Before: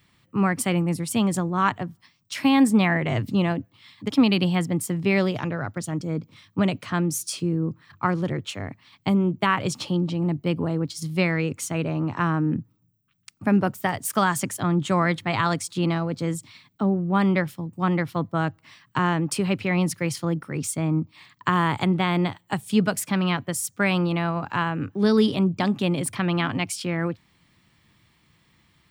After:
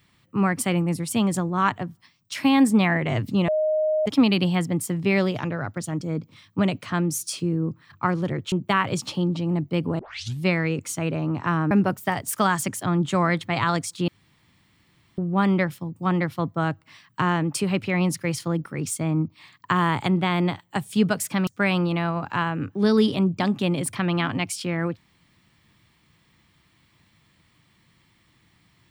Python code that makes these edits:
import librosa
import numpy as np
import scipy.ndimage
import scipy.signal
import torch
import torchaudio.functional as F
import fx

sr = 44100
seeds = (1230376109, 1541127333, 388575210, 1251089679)

y = fx.edit(x, sr, fx.bleep(start_s=3.48, length_s=0.58, hz=620.0, db=-19.0),
    fx.cut(start_s=8.52, length_s=0.73),
    fx.tape_start(start_s=10.72, length_s=0.42),
    fx.cut(start_s=12.44, length_s=1.04),
    fx.room_tone_fill(start_s=15.85, length_s=1.1),
    fx.cut(start_s=23.24, length_s=0.43), tone=tone)